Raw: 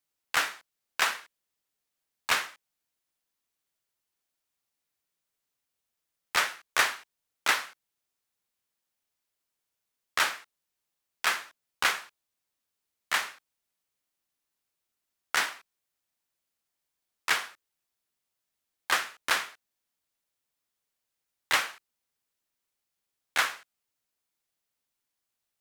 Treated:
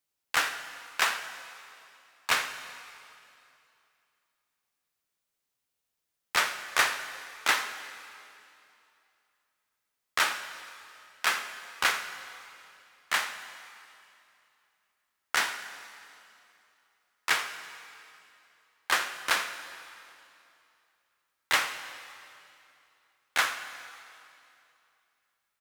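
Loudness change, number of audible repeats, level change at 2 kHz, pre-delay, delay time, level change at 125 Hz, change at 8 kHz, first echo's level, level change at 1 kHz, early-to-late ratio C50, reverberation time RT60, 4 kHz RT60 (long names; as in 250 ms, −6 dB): −0.5 dB, 1, +0.5 dB, 5 ms, 84 ms, can't be measured, +0.5 dB, −17.0 dB, +0.5 dB, 9.0 dB, 2.7 s, 2.5 s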